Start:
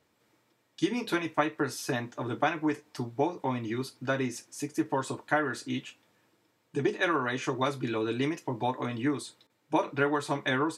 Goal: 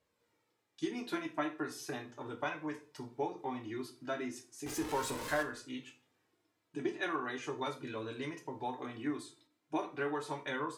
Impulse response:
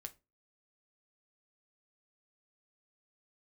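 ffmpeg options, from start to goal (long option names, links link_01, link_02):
-filter_complex "[0:a]asettb=1/sr,asplit=3[link_01][link_02][link_03];[link_01]atrim=end=4.664[link_04];[link_02]atrim=start=4.66:end=5.43,asetpts=PTS-STARTPTS,afade=type=in:duration=0.004:curve=qsin,afade=type=out:start_time=0.766:duration=0.004:curve=qsin,aeval=exprs='val(0)+0.5*0.0447*sgn(val(0))':channel_layout=same[link_05];[link_03]atrim=start=5.426[link_06];[link_04][link_05]acrossfade=duration=0.004:curve1=hsin:curve2=qsin[link_07];[link_07][link_06]acrossfade=duration=0.004:curve1=qsin:curve2=hsin[link_08];[1:a]atrim=start_sample=2205,asetrate=26460,aresample=44100[link_09];[link_08][link_09]afir=irnorm=-1:irlink=0,flanger=delay=1.8:depth=1.3:regen=40:speed=0.37:shape=triangular,volume=-2.5dB"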